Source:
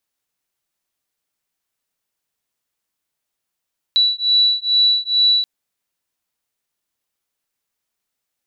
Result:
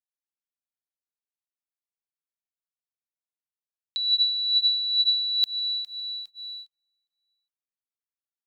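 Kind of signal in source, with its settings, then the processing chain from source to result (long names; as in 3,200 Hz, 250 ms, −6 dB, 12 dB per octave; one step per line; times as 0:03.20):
two tones that beat 3,940 Hz, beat 2.3 Hz, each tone −16 dBFS 1.48 s
repeating echo 408 ms, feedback 53%, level −16.5 dB
noise gate −48 dBFS, range −33 dB
compressor whose output falls as the input rises −24 dBFS, ratio −1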